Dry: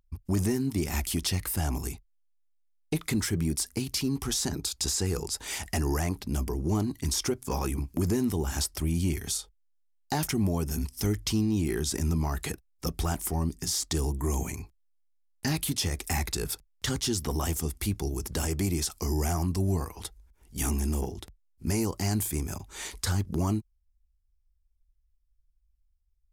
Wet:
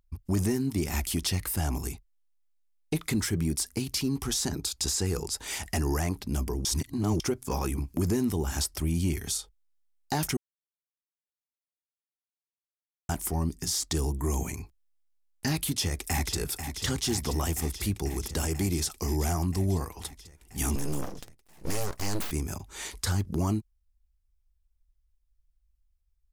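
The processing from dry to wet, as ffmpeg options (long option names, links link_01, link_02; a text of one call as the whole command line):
ffmpeg -i in.wav -filter_complex "[0:a]asplit=2[link_01][link_02];[link_02]afade=type=in:start_time=15.65:duration=0.01,afade=type=out:start_time=16.35:duration=0.01,aecho=0:1:490|980|1470|1960|2450|2940|3430|3920|4410|4900|5390|5880:0.375837|0.30067|0.240536|0.192429|0.153943|0.123154|0.0985235|0.0788188|0.0630551|0.050444|0.0403552|0.0322842[link_03];[link_01][link_03]amix=inputs=2:normalize=0,asettb=1/sr,asplit=3[link_04][link_05][link_06];[link_04]atrim=end=20.754[link_07];[link_05]atrim=start=20.75:end=22.31,asetpts=PTS-STARTPTS,afade=type=in:duration=0.004:curve=qsin,afade=type=out:start_time=1.556:duration=0.004:curve=qsin,aeval=exprs='abs(val(0))':channel_layout=same[link_08];[link_06]atrim=start=22.306[link_09];[link_07][link_08]acrossfade=duration=0.004:curve1=hsin:curve2=qsin[link_10];[link_10][link_09]acrossfade=duration=0.004:curve1=qsin:curve2=hsin,asplit=5[link_11][link_12][link_13][link_14][link_15];[link_11]atrim=end=6.652[link_16];[link_12]atrim=start=6.648:end=7.202,asetpts=PTS-STARTPTS,areverse[link_17];[link_13]atrim=start=7.198:end=10.37,asetpts=PTS-STARTPTS,afade=type=out:start_time=3.168:duration=0.004:curve=hsin[link_18];[link_14]atrim=start=10.37:end=13.09,asetpts=PTS-STARTPTS,volume=0[link_19];[link_15]atrim=start=13.09,asetpts=PTS-STARTPTS,afade=type=in:duration=0.004:curve=hsin[link_20];[link_16][link_17]acrossfade=duration=0.004:curve1=hsin:curve2=hsin[link_21];[link_18][link_19][link_20]concat=n=3:v=0:a=1[link_22];[link_21][link_22]acrossfade=duration=0.004:curve1=hsin:curve2=hsin" out.wav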